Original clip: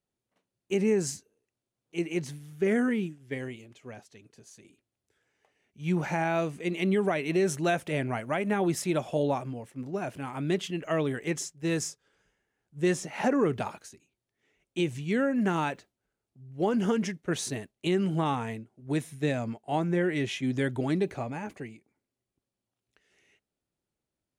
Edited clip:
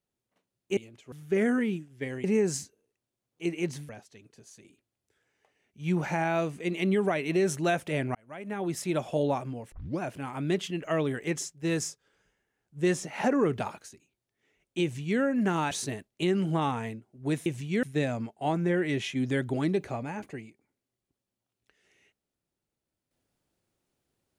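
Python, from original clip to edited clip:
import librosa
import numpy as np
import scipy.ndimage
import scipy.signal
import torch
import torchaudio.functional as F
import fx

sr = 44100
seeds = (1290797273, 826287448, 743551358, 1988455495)

y = fx.edit(x, sr, fx.swap(start_s=0.77, length_s=1.65, other_s=3.54, other_length_s=0.35),
    fx.fade_in_span(start_s=8.15, length_s=0.89),
    fx.tape_start(start_s=9.72, length_s=0.28),
    fx.duplicate(start_s=14.83, length_s=0.37, to_s=19.1),
    fx.cut(start_s=15.71, length_s=1.64), tone=tone)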